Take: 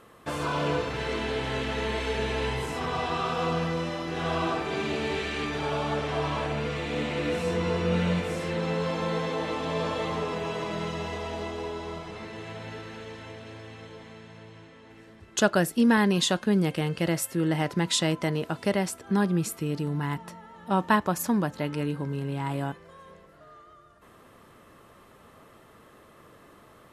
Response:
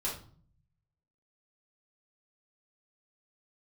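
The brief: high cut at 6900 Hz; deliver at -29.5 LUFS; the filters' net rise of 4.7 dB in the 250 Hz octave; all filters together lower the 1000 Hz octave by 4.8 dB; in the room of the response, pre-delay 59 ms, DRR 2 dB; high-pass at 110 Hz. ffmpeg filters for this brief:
-filter_complex "[0:a]highpass=110,lowpass=6.9k,equalizer=f=250:t=o:g=7,equalizer=f=1k:t=o:g=-6.5,asplit=2[a][b];[1:a]atrim=start_sample=2205,adelay=59[c];[b][c]afir=irnorm=-1:irlink=0,volume=-5.5dB[d];[a][d]amix=inputs=2:normalize=0,volume=-6dB"

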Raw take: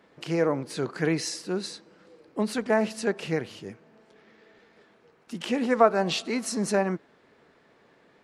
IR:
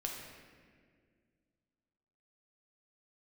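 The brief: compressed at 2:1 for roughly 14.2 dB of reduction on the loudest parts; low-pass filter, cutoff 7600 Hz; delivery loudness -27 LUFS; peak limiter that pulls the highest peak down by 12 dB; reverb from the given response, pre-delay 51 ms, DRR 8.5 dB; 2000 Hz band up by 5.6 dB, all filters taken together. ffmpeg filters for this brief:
-filter_complex "[0:a]lowpass=7.6k,equalizer=f=2k:t=o:g=7,acompressor=threshold=-39dB:ratio=2,alimiter=level_in=5dB:limit=-24dB:level=0:latency=1,volume=-5dB,asplit=2[a][b];[1:a]atrim=start_sample=2205,adelay=51[c];[b][c]afir=irnorm=-1:irlink=0,volume=-9dB[d];[a][d]amix=inputs=2:normalize=0,volume=12.5dB"

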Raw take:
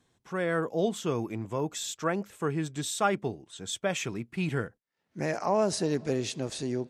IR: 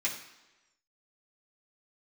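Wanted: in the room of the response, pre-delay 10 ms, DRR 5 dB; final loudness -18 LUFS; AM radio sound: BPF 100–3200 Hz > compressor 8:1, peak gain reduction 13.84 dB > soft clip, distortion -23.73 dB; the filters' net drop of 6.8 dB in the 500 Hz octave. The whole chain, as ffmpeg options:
-filter_complex "[0:a]equalizer=f=500:t=o:g=-9,asplit=2[a][b];[1:a]atrim=start_sample=2205,adelay=10[c];[b][c]afir=irnorm=-1:irlink=0,volume=-11dB[d];[a][d]amix=inputs=2:normalize=0,highpass=100,lowpass=3.2k,acompressor=threshold=-36dB:ratio=8,asoftclip=threshold=-28dB,volume=24dB"

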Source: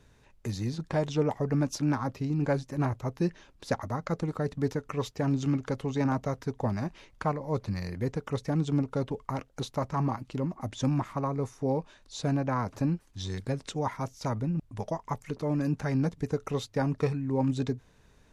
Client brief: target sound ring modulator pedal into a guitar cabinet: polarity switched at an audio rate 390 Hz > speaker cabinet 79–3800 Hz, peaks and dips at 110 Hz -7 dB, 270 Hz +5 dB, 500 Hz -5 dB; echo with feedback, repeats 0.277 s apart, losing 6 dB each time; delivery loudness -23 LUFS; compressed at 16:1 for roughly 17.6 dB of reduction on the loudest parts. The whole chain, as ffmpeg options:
-af "acompressor=threshold=-40dB:ratio=16,aecho=1:1:277|554|831|1108|1385|1662:0.501|0.251|0.125|0.0626|0.0313|0.0157,aeval=exprs='val(0)*sgn(sin(2*PI*390*n/s))':c=same,highpass=79,equalizer=f=110:t=q:w=4:g=-7,equalizer=f=270:t=q:w=4:g=5,equalizer=f=500:t=q:w=4:g=-5,lowpass=f=3.8k:w=0.5412,lowpass=f=3.8k:w=1.3066,volume=21.5dB"

